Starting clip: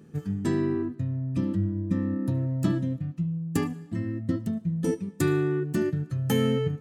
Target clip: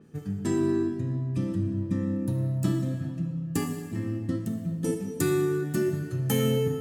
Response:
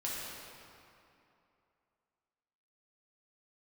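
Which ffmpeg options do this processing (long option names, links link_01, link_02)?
-filter_complex "[0:a]asplit=2[link_01][link_02];[link_02]highshelf=frequency=4500:gain=7[link_03];[1:a]atrim=start_sample=2205,asetrate=48510,aresample=44100[link_04];[link_03][link_04]afir=irnorm=-1:irlink=0,volume=-4.5dB[link_05];[link_01][link_05]amix=inputs=2:normalize=0,adynamicequalizer=threshold=0.00316:dfrequency=5800:dqfactor=0.7:tfrequency=5800:tqfactor=0.7:attack=5:release=100:ratio=0.375:range=3:mode=boostabove:tftype=highshelf,volume=-5dB"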